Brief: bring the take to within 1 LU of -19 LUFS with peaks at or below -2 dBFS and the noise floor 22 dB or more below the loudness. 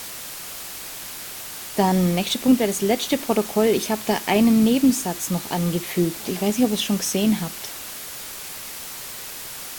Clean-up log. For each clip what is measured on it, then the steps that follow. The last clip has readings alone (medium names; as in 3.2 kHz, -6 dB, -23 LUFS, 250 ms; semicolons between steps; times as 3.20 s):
noise floor -35 dBFS; noise floor target -45 dBFS; loudness -22.5 LUFS; peak level -5.0 dBFS; loudness target -19.0 LUFS
-> noise print and reduce 10 dB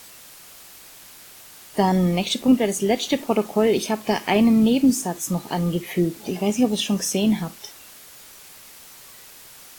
noise floor -45 dBFS; loudness -21.0 LUFS; peak level -5.0 dBFS; loudness target -19.0 LUFS
-> trim +2 dB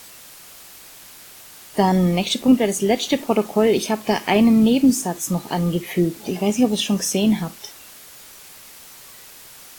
loudness -19.0 LUFS; peak level -3.0 dBFS; noise floor -43 dBFS